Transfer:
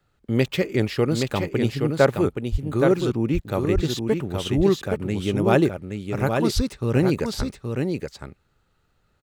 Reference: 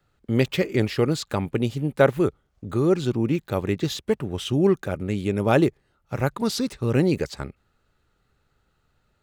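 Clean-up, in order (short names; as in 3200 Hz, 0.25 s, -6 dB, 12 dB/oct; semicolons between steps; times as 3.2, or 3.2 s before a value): 2.51–2.63 HPF 140 Hz 24 dB/oct; 3.74–3.86 HPF 140 Hz 24 dB/oct; 6.55–6.67 HPF 140 Hz 24 dB/oct; inverse comb 0.822 s -5 dB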